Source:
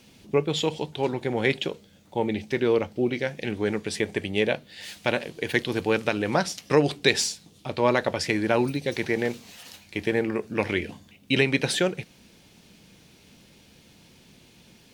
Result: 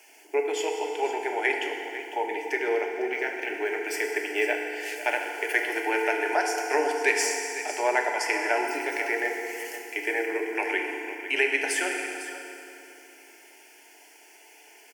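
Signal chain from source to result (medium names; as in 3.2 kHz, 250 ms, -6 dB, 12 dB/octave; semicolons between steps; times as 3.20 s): steep high-pass 420 Hz 36 dB/octave; in parallel at +1 dB: compression, threshold -35 dBFS, peak gain reduction 18 dB; on the sum: static phaser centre 780 Hz, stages 8; on a send: delay 502 ms -13 dB; on the sum: FDN reverb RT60 2.9 s, low-frequency decay 1.25×, high-frequency decay 0.8×, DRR 1.5 dB; 2.89–4.96 s: decimation joined by straight lines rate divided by 2×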